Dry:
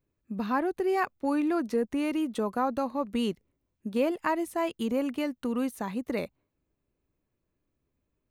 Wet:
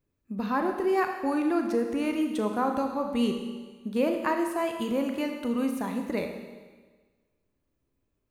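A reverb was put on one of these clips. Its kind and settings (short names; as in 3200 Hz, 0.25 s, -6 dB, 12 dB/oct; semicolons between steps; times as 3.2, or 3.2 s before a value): Schroeder reverb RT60 1.4 s, combs from 26 ms, DRR 4 dB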